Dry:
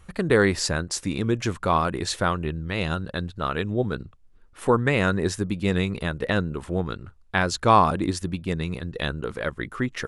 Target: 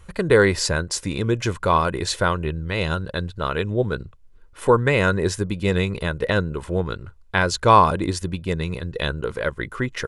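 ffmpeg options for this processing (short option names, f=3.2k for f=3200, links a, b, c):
-af "aecho=1:1:2:0.36,volume=2.5dB"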